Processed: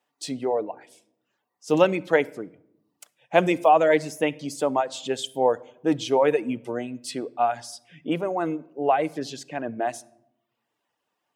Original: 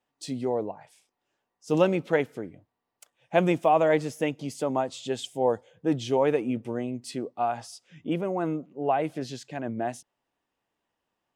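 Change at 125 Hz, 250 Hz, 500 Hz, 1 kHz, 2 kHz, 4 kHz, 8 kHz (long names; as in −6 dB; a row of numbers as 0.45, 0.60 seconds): −2.5, +1.0, +3.0, +4.5, +5.0, +5.0, +5.0 decibels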